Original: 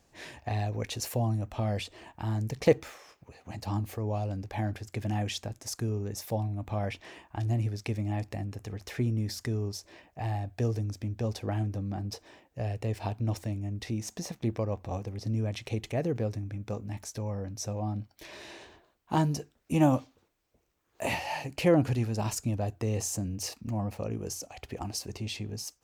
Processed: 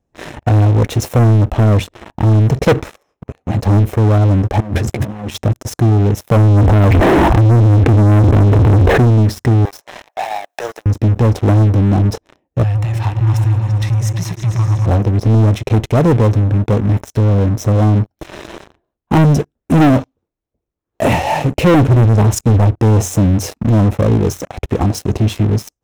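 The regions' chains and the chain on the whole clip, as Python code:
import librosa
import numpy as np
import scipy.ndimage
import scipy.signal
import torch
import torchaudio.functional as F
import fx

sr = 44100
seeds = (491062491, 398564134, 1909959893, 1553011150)

y = fx.chain(x, sr, fx.over_compress(threshold_db=-43.0, ratio=-1.0),
    fx.doubler(ms=14.0, db=-6.5), at=(4.6, 5.35))
y = fx.chain(y, sr, fx.gaussian_blur(sigma=4.8),
    fx.env_flatten(amount_pct=100), at=(6.31, 9.05))
y = fx.chain(y, sr, fx.law_mismatch(coded='mu'),
    fx.highpass(hz=690.0, slope=24),
    fx.band_squash(depth_pct=70), at=(9.65, 10.86))
y = fx.chain(y, sr, fx.cheby2_bandstop(low_hz=260.0, high_hz=540.0, order=4, stop_db=50),
    fx.low_shelf(hz=320.0, db=-9.0),
    fx.echo_opening(ms=114, hz=400, octaves=2, feedback_pct=70, wet_db=-3), at=(12.63, 14.86))
y = fx.chain(y, sr, fx.low_shelf(hz=160.0, db=5.5),
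    fx.band_widen(depth_pct=100), at=(21.87, 22.78))
y = fx.tilt_shelf(y, sr, db=8.0, hz=970.0)
y = fx.leveller(y, sr, passes=5)
y = fx.notch(y, sr, hz=4600.0, q=8.9)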